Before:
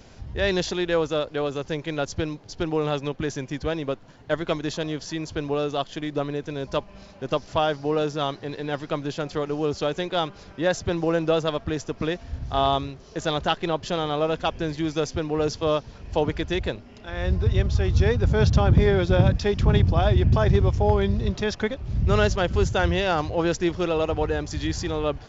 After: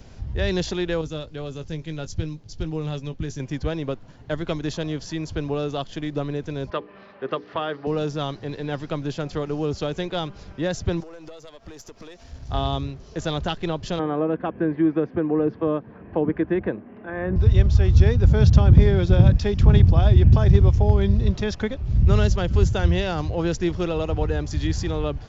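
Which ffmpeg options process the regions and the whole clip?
ffmpeg -i in.wav -filter_complex "[0:a]asettb=1/sr,asplit=3[link_01][link_02][link_03];[link_01]atrim=end=1.014[link_04];[link_02]atrim=start=1.01:end=3.4,asetpts=PTS-STARTPTS,afade=type=in:duration=0.004:curve=qsin,afade=type=out:start_time=2.386:duration=0.004:curve=qsin,equalizer=frequency=900:width=0.33:gain=-10,asplit=2[link_05][link_06];[link_06]adelay=19,volume=-12dB[link_07];[link_05][link_07]amix=inputs=2:normalize=0,atrim=end_sample=105399[link_08];[link_03]atrim=start=3.396[link_09];[link_04][link_08]acrossfade=duration=0.004:curve1=hsin:curve2=qsin[link_10];[link_10][link_09]acrossfade=duration=0.004:curve1=qsin:curve2=hsin,asettb=1/sr,asplit=3[link_11][link_12][link_13];[link_11]atrim=end=6.704[link_14];[link_12]atrim=start=6.7:end=7.87,asetpts=PTS-STARTPTS,afade=type=in:duration=0.004:curve=qsin,afade=type=out:start_time=1.166:duration=0.004:curve=qsin,highpass=260,equalizer=frequency=410:width_type=q:width=4:gain=6,equalizer=frequency=1200:width_type=q:width=4:gain=9,equalizer=frequency=1800:width_type=q:width=4:gain=9,lowpass=frequency=3600:width=0.5412,lowpass=frequency=3600:width=1.3066,bandreject=frequency=60:width_type=h:width=6,bandreject=frequency=120:width_type=h:width=6,bandreject=frequency=180:width_type=h:width=6,bandreject=frequency=240:width_type=h:width=6,bandreject=frequency=300:width_type=h:width=6,bandreject=frequency=360:width_type=h:width=6,bandreject=frequency=420:width_type=h:width=6,bandreject=frequency=480:width_type=h:width=6[link_15];[link_13]atrim=start=7.866[link_16];[link_14][link_15]acrossfade=duration=0.004:curve1=hsin:curve2=qsin[link_17];[link_17][link_16]acrossfade=duration=0.004:curve1=qsin:curve2=hsin,asettb=1/sr,asplit=3[link_18][link_19][link_20];[link_18]atrim=end=11.004[link_21];[link_19]atrim=start=11:end=12.49,asetpts=PTS-STARTPTS,afade=type=in:duration=0.004:curve=qsin,afade=type=out:start_time=1.486:duration=0.004:curve=qsin,bass=frequency=250:gain=-11,treble=frequency=4000:gain=9,acompressor=threshold=-35dB:ratio=10:attack=3.2:release=140:knee=1:detection=peak,aeval=exprs='(tanh(39.8*val(0)+0.45)-tanh(0.45))/39.8':channel_layout=same[link_22];[link_20]atrim=start=12.486[link_23];[link_21][link_22]acrossfade=duration=0.004:curve1=hsin:curve2=qsin[link_24];[link_24][link_23]acrossfade=duration=0.004:curve1=qsin:curve2=hsin,asettb=1/sr,asplit=3[link_25][link_26][link_27];[link_25]atrim=end=13.994[link_28];[link_26]atrim=start=13.99:end=17.36,asetpts=PTS-STARTPTS,afade=type=in:duration=0.004:curve=qsin,afade=type=out:start_time=3.366:duration=0.004:curve=qsin,highpass=180,equalizer=frequency=200:width_type=q:width=4:gain=7,equalizer=frequency=320:width_type=q:width=4:gain=8,equalizer=frequency=470:width_type=q:width=4:gain=5,equalizer=frequency=710:width_type=q:width=4:gain=3,equalizer=frequency=1100:width_type=q:width=4:gain=5,equalizer=frequency=1600:width_type=q:width=4:gain=6,lowpass=frequency=2100:width=0.5412,lowpass=frequency=2100:width=1.3066,bandreject=frequency=1400:width=18[link_29];[link_27]atrim=start=17.356[link_30];[link_28][link_29]acrossfade=duration=0.004:curve1=hsin:curve2=qsin[link_31];[link_31][link_30]acrossfade=duration=0.004:curve1=qsin:curve2=hsin,lowshelf=frequency=180:gain=9,acrossover=split=360|3000[link_32][link_33][link_34];[link_33]acompressor=threshold=-24dB:ratio=6[link_35];[link_32][link_35][link_34]amix=inputs=3:normalize=0,volume=-1.5dB" out.wav

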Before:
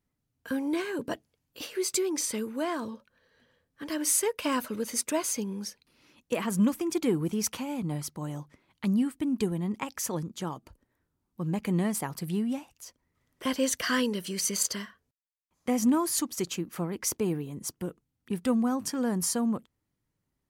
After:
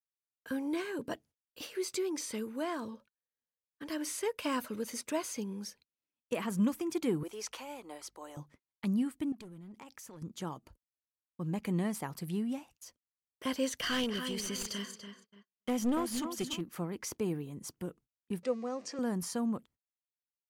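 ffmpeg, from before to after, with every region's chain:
ffmpeg -i in.wav -filter_complex "[0:a]asettb=1/sr,asplit=3[link_01][link_02][link_03];[link_01]atrim=end=7.234[link_04];[link_02]atrim=start=7.23:end=8.37,asetpts=PTS-STARTPTS,afade=type=in:duration=0.004:curve=qsin,afade=type=out:start_time=1.136:duration=0.004:curve=qsin,acrossover=split=8800[link_05][link_06];[link_06]acompressor=threshold=-52dB:ratio=4:attack=1:release=60[link_07];[link_05][link_07]amix=inputs=2:normalize=0,highpass=frequency=390:width=0.5412,highpass=frequency=390:width=1.3066,aeval=exprs='val(0)+0.000282*(sin(2*PI*50*n/s)+sin(2*PI*2*50*n/s)/2+sin(2*PI*3*50*n/s)/3+sin(2*PI*4*50*n/s)/4+sin(2*PI*5*50*n/s)/5)':channel_layout=same[link_08];[link_03]atrim=start=8.366[link_09];[link_04][link_08]acrossfade=duration=0.004:curve1=hsin:curve2=qsin[link_10];[link_10][link_09]acrossfade=duration=0.004:curve1=qsin:curve2=hsin,asettb=1/sr,asplit=3[link_11][link_12][link_13];[link_11]atrim=end=9.324[link_14];[link_12]atrim=start=9.32:end=10.22,asetpts=PTS-STARTPTS,afade=type=in:duration=0.004:curve=qsin,afade=type=out:start_time=0.896:duration=0.004:curve=qsin,asoftclip=type=hard:threshold=-26.5dB,acompressor=threshold=-41dB:ratio=16:attack=3.2:release=140:knee=1:detection=peak[link_15];[link_13]atrim=start=10.216[link_16];[link_14][link_15]acrossfade=duration=0.004:curve1=hsin:curve2=qsin[link_17];[link_17][link_16]acrossfade=duration=0.004:curve1=qsin:curve2=hsin,asettb=1/sr,asplit=3[link_18][link_19][link_20];[link_18]atrim=end=13.804[link_21];[link_19]atrim=start=13.8:end=16.61,asetpts=PTS-STARTPTS,afade=type=in:duration=0.004:curve=qsin,afade=type=out:start_time=2.806:duration=0.004:curve=qsin,equalizer=frequency=3100:width_type=o:width=0.24:gain=9,asplit=2[link_22][link_23];[link_23]adelay=287,lowpass=frequency=2900:poles=1,volume=-8dB,asplit=2[link_24][link_25];[link_25]adelay=287,lowpass=frequency=2900:poles=1,volume=0.32,asplit=2[link_26][link_27];[link_27]adelay=287,lowpass=frequency=2900:poles=1,volume=0.32,asplit=2[link_28][link_29];[link_29]adelay=287,lowpass=frequency=2900:poles=1,volume=0.32[link_30];[link_22][link_24][link_26][link_28][link_30]amix=inputs=5:normalize=0,atrim=end_sample=123921,aeval=exprs='clip(val(0),-1,0.0473)':channel_layout=same[link_31];[link_20]atrim=start=16.606[link_32];[link_21][link_31]acrossfade=duration=0.004:curve1=hsin:curve2=qsin[link_33];[link_33][link_32]acrossfade=duration=0.004:curve1=qsin:curve2=hsin,asettb=1/sr,asplit=3[link_34][link_35][link_36];[link_34]atrim=end=18.434[link_37];[link_35]atrim=start=18.43:end=18.99,asetpts=PTS-STARTPTS,afade=type=in:duration=0.004:curve=qsin,afade=type=out:start_time=0.556:duration=0.004:curve=qsin,aeval=exprs='val(0)+0.5*0.00841*sgn(val(0))':channel_layout=same,highpass=430,equalizer=frequency=500:width_type=q:width=4:gain=7,equalizer=frequency=910:width_type=q:width=4:gain=-9,equalizer=frequency=1500:width_type=q:width=4:gain=-8,equalizer=frequency=3300:width_type=q:width=4:gain=-8,lowpass=frequency=6600:width=0.5412,lowpass=frequency=6600:width=1.3066[link_38];[link_36]atrim=start=18.986[link_39];[link_37][link_38]acrossfade=duration=0.004:curve1=hsin:curve2=qsin[link_40];[link_40][link_39]acrossfade=duration=0.004:curve1=qsin:curve2=hsin,agate=range=-33dB:threshold=-53dB:ratio=16:detection=peak,acrossover=split=4900[link_41][link_42];[link_42]acompressor=threshold=-35dB:ratio=4:attack=1:release=60[link_43];[link_41][link_43]amix=inputs=2:normalize=0,volume=-5dB" out.wav

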